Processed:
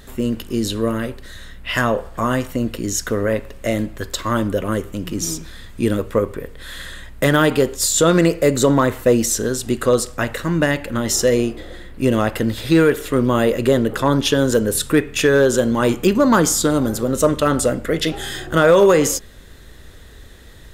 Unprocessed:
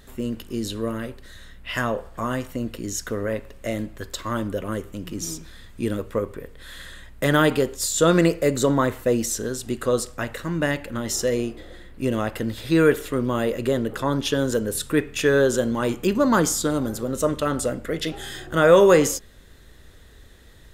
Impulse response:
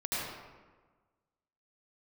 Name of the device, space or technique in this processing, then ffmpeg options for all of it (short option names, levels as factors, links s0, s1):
limiter into clipper: -af "alimiter=limit=0.282:level=0:latency=1:release=269,asoftclip=type=hard:threshold=0.237,volume=2.24"